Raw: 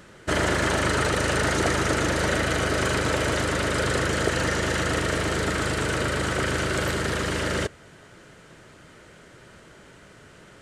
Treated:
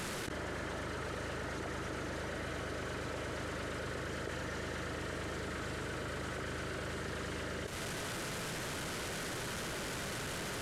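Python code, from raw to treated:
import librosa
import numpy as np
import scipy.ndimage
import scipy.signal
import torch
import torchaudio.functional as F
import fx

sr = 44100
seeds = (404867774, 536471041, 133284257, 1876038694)

y = fx.delta_mod(x, sr, bps=64000, step_db=-39.0)
y = fx.gate_flip(y, sr, shuts_db=-20.0, range_db=-31)
y = fx.env_flatten(y, sr, amount_pct=100)
y = y * 10.0 ** (-8.0 / 20.0)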